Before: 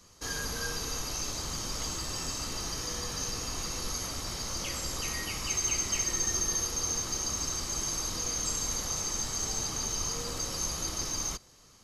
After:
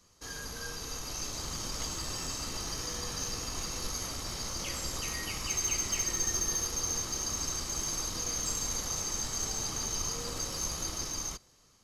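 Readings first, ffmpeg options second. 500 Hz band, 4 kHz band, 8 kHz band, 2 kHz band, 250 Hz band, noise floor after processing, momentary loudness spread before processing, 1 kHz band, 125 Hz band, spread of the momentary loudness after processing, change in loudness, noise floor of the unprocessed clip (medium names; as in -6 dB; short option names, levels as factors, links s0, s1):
-2.0 dB, -1.5 dB, -1.5 dB, -2.5 dB, -1.5 dB, -63 dBFS, 6 LU, -1.5 dB, -1.5 dB, 7 LU, -1.5 dB, -57 dBFS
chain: -af "dynaudnorm=f=310:g=7:m=1.78,aeval=exprs='0.266*(cos(1*acos(clip(val(0)/0.266,-1,1)))-cos(1*PI/2))+0.0119*(cos(6*acos(clip(val(0)/0.266,-1,1)))-cos(6*PI/2))':c=same,volume=0.473"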